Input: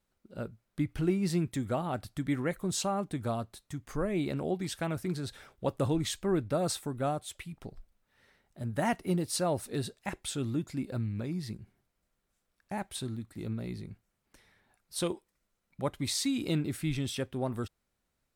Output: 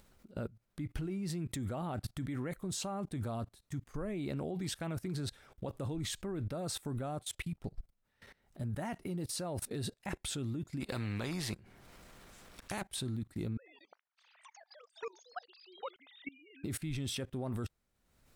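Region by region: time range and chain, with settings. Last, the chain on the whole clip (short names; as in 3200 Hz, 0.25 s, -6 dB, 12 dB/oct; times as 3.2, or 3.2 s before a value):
10.8–12.82 high shelf 7700 Hz -9 dB + upward compressor, threshold -41 dBFS + spectral compressor 2:1
13.57–16.64 sine-wave speech + HPF 560 Hz 24 dB/oct + echoes that change speed 91 ms, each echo +5 st, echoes 3, each echo -6 dB
whole clip: level quantiser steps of 22 dB; low shelf 220 Hz +4 dB; upward compressor, threshold -55 dBFS; gain +5 dB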